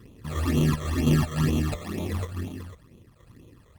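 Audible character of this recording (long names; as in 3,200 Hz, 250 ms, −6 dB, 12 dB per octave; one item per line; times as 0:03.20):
tremolo saw down 0.94 Hz, depth 30%
aliases and images of a low sample rate 1,500 Hz, jitter 0%
phaser sweep stages 12, 2.1 Hz, lowest notch 260–1,700 Hz
Opus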